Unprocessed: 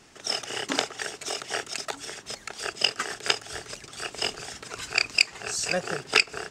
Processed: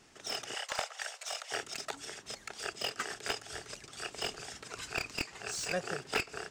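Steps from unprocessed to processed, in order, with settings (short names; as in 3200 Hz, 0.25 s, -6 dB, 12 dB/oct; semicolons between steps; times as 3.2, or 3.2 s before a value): 0.54–1.52 steep high-pass 510 Hz 72 dB/oct; slew limiter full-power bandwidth 230 Hz; gain -6.5 dB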